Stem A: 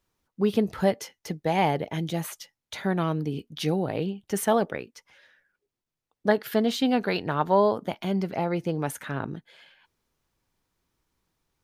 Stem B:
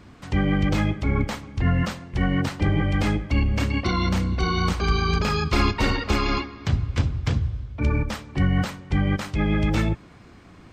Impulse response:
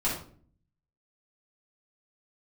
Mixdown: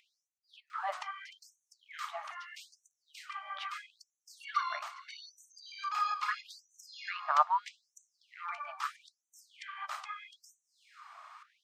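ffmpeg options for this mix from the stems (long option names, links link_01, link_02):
-filter_complex "[0:a]lowpass=2200,acompressor=mode=upward:threshold=-31dB:ratio=2.5,volume=-6dB[link_01];[1:a]acompressor=threshold=-29dB:ratio=8,adelay=700,volume=-4.5dB[link_02];[link_01][link_02]amix=inputs=2:normalize=0,equalizer=frequency=1200:width=4.2:gain=14.5,afftfilt=real='re*gte(b*sr/1024,570*pow(5900/570,0.5+0.5*sin(2*PI*0.78*pts/sr)))':imag='im*gte(b*sr/1024,570*pow(5900/570,0.5+0.5*sin(2*PI*0.78*pts/sr)))':win_size=1024:overlap=0.75"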